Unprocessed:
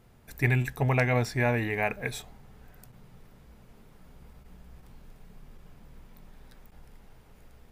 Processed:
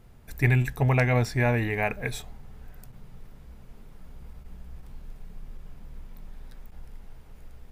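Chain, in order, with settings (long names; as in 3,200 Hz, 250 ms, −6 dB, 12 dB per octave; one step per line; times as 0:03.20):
low-shelf EQ 79 Hz +10 dB
level +1 dB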